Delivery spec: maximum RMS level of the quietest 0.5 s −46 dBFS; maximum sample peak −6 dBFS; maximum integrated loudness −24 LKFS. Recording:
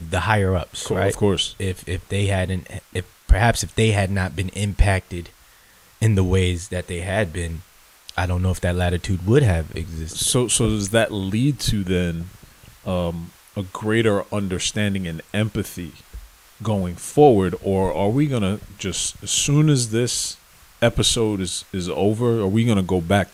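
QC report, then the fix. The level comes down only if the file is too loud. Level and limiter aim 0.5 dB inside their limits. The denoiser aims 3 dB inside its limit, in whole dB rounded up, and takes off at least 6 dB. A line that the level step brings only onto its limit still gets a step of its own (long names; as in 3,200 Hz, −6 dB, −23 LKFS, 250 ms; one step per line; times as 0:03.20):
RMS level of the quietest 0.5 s −52 dBFS: in spec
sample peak −2.5 dBFS: out of spec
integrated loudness −21.0 LKFS: out of spec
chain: level −3.5 dB
brickwall limiter −6.5 dBFS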